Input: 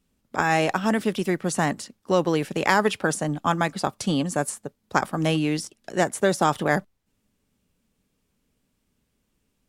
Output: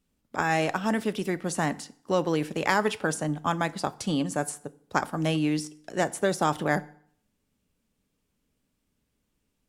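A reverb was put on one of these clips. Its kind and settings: FDN reverb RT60 0.6 s, low-frequency decay 1×, high-frequency decay 0.8×, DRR 15 dB; gain -4 dB

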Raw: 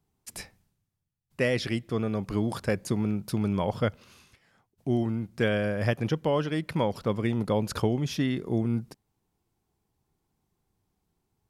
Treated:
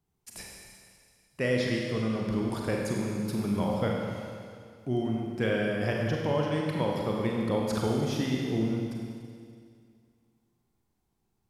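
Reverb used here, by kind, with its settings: Schroeder reverb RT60 2.2 s, combs from 32 ms, DRR -1.5 dB; gain -4.5 dB

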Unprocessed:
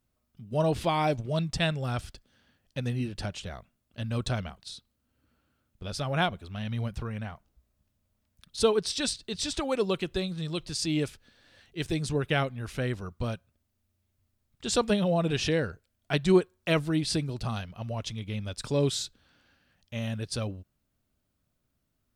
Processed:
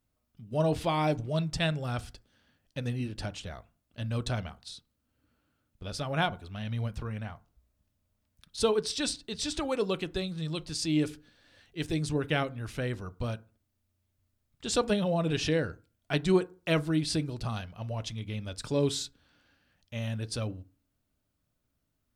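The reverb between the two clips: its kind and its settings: FDN reverb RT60 0.35 s, low-frequency decay 1.2×, high-frequency decay 0.4×, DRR 14 dB; gain -2 dB

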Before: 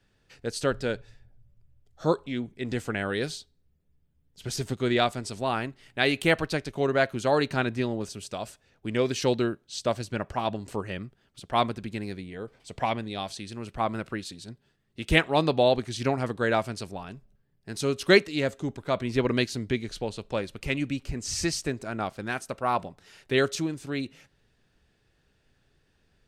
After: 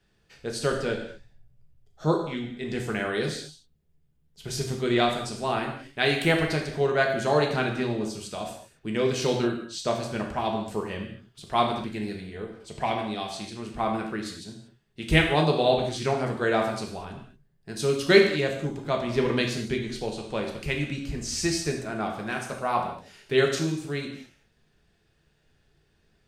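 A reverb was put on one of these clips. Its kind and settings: non-linear reverb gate 0.26 s falling, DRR 1 dB; gain -1.5 dB

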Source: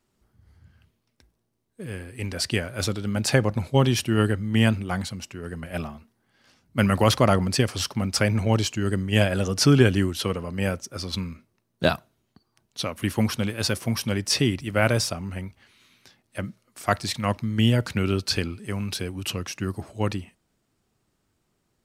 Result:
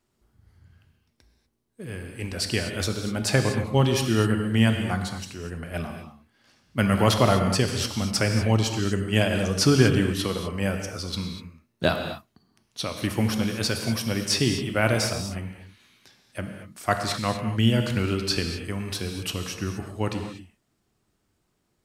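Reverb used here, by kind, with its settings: non-linear reverb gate 0.27 s flat, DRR 4.5 dB; gain -1.5 dB

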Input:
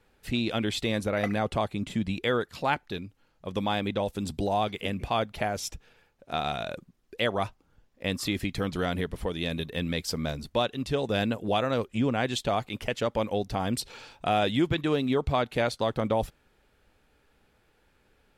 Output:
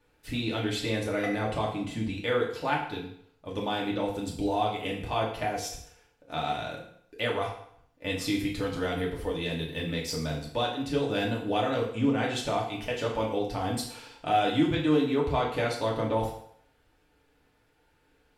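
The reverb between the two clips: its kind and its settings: FDN reverb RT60 0.66 s, low-frequency decay 0.8×, high-frequency decay 0.9×, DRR -3.5 dB; gain -6 dB

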